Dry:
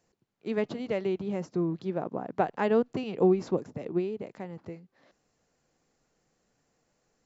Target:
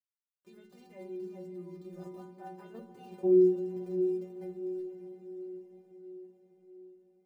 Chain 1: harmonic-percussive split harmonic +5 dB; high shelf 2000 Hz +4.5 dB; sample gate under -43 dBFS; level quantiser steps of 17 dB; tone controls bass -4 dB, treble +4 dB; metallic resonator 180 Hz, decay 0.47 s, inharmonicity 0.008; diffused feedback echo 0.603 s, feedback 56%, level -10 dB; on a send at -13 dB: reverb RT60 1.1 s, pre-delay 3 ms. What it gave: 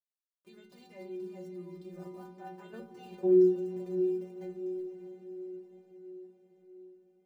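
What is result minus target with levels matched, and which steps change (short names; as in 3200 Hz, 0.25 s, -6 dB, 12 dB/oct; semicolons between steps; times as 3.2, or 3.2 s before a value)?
4000 Hz band +4.5 dB
change: high shelf 2000 Hz -3.5 dB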